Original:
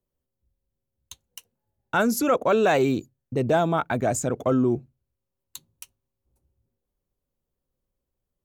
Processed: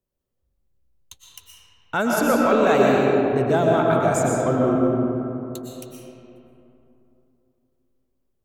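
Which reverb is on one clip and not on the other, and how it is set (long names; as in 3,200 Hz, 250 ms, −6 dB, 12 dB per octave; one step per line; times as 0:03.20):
comb and all-pass reverb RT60 3.1 s, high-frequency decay 0.45×, pre-delay 80 ms, DRR −3 dB
level −1 dB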